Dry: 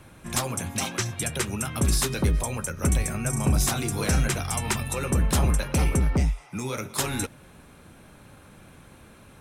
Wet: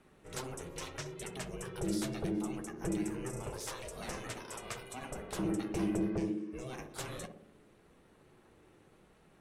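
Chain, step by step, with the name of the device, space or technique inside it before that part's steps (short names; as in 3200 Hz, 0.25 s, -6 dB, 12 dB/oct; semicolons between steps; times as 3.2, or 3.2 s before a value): 3.4–5.39 HPF 220 Hz 12 dB/oct; high shelf 11000 Hz -10 dB; alien voice (ring modulator 260 Hz; flange 0.76 Hz, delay 4.2 ms, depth 5.7 ms, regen -49%); narrowing echo 61 ms, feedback 73%, band-pass 310 Hz, level -4 dB; gain -7 dB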